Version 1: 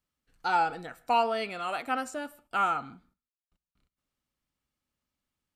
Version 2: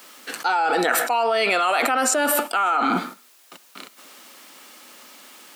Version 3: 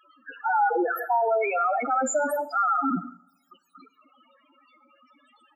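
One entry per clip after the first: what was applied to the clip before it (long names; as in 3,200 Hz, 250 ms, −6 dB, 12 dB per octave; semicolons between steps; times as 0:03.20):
Bessel high-pass filter 400 Hz, order 8; envelope flattener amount 100%; level +2.5 dB
slap from a distant wall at 27 metres, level −26 dB; spectral peaks only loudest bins 4; coupled-rooms reverb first 0.65 s, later 1.7 s, from −16 dB, DRR 16.5 dB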